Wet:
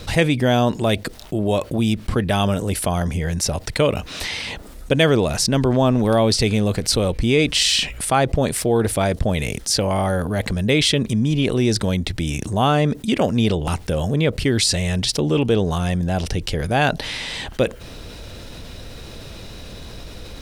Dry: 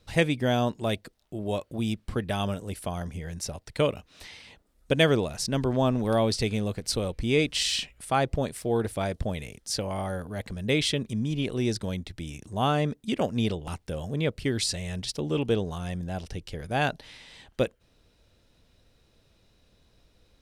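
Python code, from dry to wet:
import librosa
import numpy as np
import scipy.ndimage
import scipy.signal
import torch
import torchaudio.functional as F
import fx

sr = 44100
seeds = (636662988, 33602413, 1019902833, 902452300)

y = fx.env_flatten(x, sr, amount_pct=50)
y = F.gain(torch.from_numpy(y), 4.5).numpy()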